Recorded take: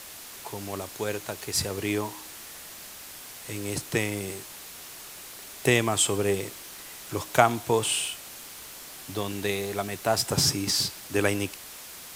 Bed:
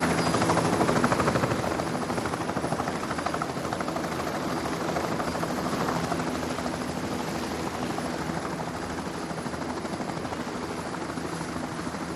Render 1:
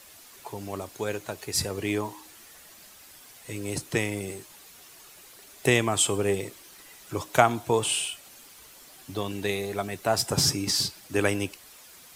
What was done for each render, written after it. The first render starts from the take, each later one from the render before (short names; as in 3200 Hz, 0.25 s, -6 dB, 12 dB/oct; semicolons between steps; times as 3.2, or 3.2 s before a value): denoiser 9 dB, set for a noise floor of -43 dBFS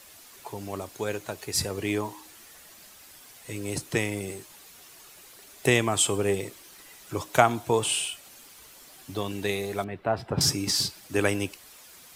9.84–10.41 air absorption 450 m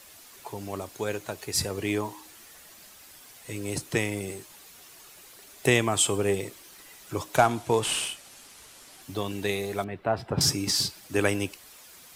7.36–9.02 CVSD 64 kbps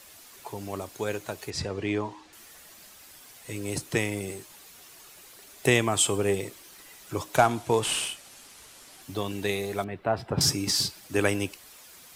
1.5–2.33 air absorption 120 m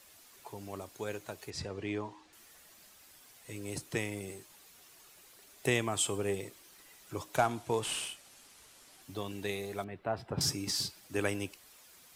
gain -8 dB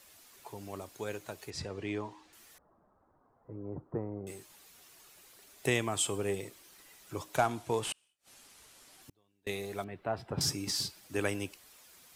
2.58–4.27 steep low-pass 1200 Hz; 7.92–9.47 flipped gate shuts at -39 dBFS, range -34 dB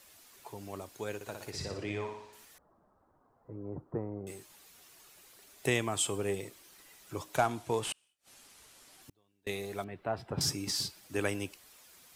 1.15–2.45 flutter echo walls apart 10.2 m, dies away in 0.7 s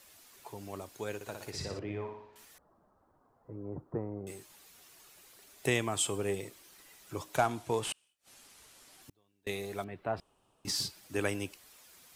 1.79–2.36 tape spacing loss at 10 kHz 33 dB; 10.2–10.65 room tone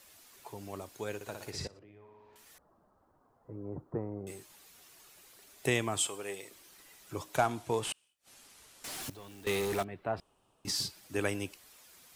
1.67–2.46 compressor 5:1, threshold -55 dBFS; 6.07–6.51 HPF 870 Hz 6 dB/oct; 8.84–9.83 power-law curve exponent 0.5